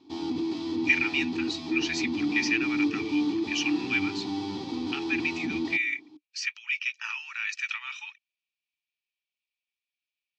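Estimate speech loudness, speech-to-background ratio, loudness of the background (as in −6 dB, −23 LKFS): −30.0 LKFS, 0.5 dB, −30.5 LKFS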